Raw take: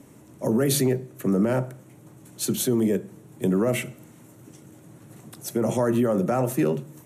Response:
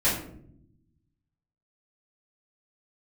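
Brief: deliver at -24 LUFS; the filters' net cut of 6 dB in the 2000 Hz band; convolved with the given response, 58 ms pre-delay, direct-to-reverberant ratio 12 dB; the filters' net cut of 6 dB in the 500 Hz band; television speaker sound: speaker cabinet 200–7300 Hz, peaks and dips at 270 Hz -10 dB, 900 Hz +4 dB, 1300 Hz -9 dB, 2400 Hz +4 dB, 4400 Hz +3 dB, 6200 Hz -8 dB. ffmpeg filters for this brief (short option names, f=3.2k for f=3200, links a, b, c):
-filter_complex "[0:a]equalizer=f=500:t=o:g=-6.5,equalizer=f=2k:t=o:g=-8,asplit=2[a][b];[1:a]atrim=start_sample=2205,adelay=58[c];[b][c]afir=irnorm=-1:irlink=0,volume=-25dB[d];[a][d]amix=inputs=2:normalize=0,highpass=f=200:w=0.5412,highpass=f=200:w=1.3066,equalizer=f=270:t=q:w=4:g=-10,equalizer=f=900:t=q:w=4:g=4,equalizer=f=1.3k:t=q:w=4:g=-9,equalizer=f=2.4k:t=q:w=4:g=4,equalizer=f=4.4k:t=q:w=4:g=3,equalizer=f=6.2k:t=q:w=4:g=-8,lowpass=f=7.3k:w=0.5412,lowpass=f=7.3k:w=1.3066,volume=6.5dB"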